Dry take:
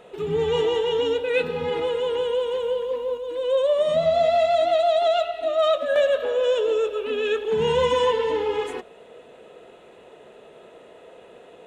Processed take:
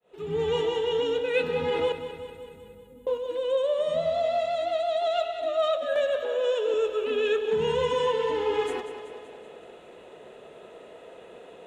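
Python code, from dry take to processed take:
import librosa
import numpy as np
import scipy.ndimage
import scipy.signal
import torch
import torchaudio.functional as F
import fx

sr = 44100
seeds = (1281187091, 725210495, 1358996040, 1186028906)

y = fx.fade_in_head(x, sr, length_s=0.52)
y = fx.cheby2_bandstop(y, sr, low_hz=750.0, high_hz=3900.0, order=4, stop_db=60, at=(1.92, 3.07))
y = fx.rider(y, sr, range_db=5, speed_s=0.5)
y = fx.highpass(y, sr, hz=240.0, slope=12, at=(6.23, 6.74))
y = fx.echo_feedback(y, sr, ms=190, feedback_pct=59, wet_db=-11)
y = y * 10.0 ** (-4.5 / 20.0)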